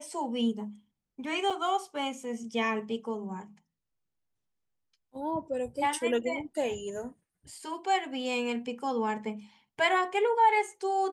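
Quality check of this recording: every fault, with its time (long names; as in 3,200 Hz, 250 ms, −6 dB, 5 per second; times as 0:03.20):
0:01.50–0:01.51: drop-out 5.3 ms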